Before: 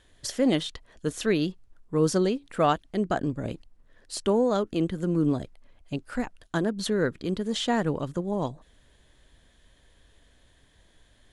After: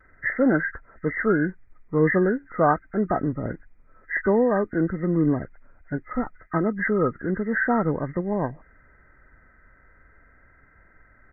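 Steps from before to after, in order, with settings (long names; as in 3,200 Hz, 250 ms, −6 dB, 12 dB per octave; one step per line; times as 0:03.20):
hearing-aid frequency compression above 1,200 Hz 4 to 1
pitch vibrato 0.4 Hz 15 cents
level +3 dB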